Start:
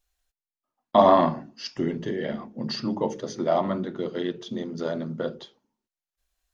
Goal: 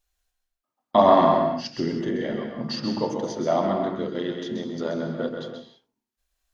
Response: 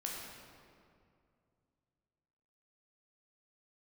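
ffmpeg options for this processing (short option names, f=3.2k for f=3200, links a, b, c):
-filter_complex "[0:a]asplit=2[a][b];[1:a]atrim=start_sample=2205,afade=t=out:st=0.26:d=0.01,atrim=end_sample=11907,adelay=130[c];[b][c]afir=irnorm=-1:irlink=0,volume=-3dB[d];[a][d]amix=inputs=2:normalize=0"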